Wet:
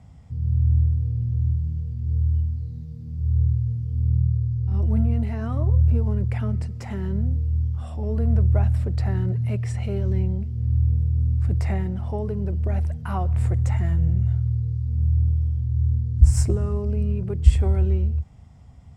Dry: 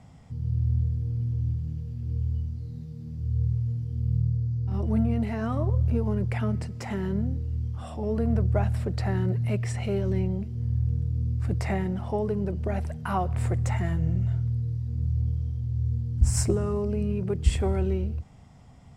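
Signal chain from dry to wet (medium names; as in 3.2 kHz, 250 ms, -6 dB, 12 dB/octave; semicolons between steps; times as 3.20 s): peaking EQ 66 Hz +12 dB 1.6 oct; trim -3 dB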